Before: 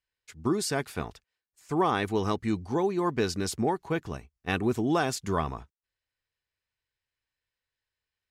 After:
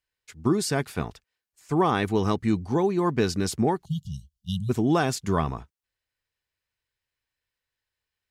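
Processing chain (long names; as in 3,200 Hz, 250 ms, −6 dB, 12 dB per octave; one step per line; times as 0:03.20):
time-frequency box erased 0:03.85–0:04.70, 210–2,800 Hz
dynamic equaliser 150 Hz, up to +5 dB, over −41 dBFS, Q 0.83
level +2 dB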